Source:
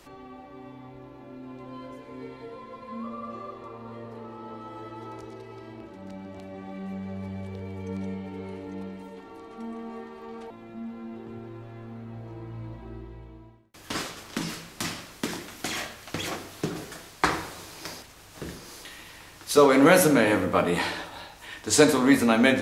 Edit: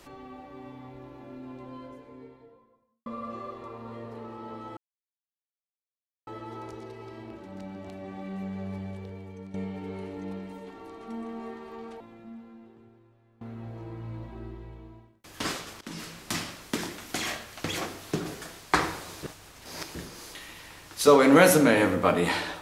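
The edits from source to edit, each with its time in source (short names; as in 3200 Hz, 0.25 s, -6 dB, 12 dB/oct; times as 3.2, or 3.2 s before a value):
1.26–3.06 studio fade out
4.77 insert silence 1.50 s
7.21–8.04 fade out, to -12.5 dB
10.22–11.91 fade out quadratic, to -21.5 dB
14.31–14.69 fade in, from -16.5 dB
17.73–18.45 reverse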